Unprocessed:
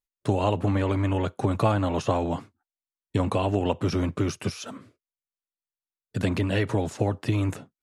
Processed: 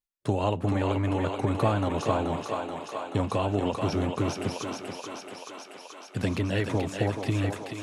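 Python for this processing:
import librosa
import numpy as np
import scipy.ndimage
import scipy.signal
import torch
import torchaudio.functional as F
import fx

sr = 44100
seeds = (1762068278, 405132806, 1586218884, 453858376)

p1 = x + fx.echo_thinned(x, sr, ms=431, feedback_pct=77, hz=350.0, wet_db=-4, dry=0)
p2 = fx.end_taper(p1, sr, db_per_s=200.0)
y = p2 * librosa.db_to_amplitude(-2.5)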